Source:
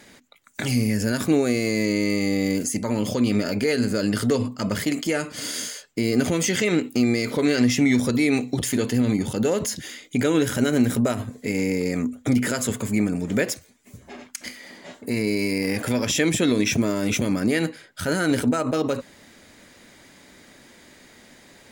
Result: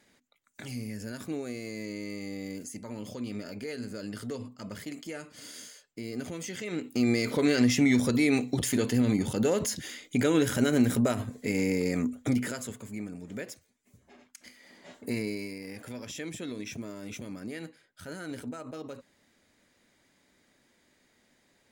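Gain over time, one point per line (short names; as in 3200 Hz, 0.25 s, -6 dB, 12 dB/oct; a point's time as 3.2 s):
6.64 s -15.5 dB
7.09 s -4 dB
12.2 s -4 dB
12.79 s -16 dB
14.48 s -16 dB
15.09 s -5.5 dB
15.59 s -17.5 dB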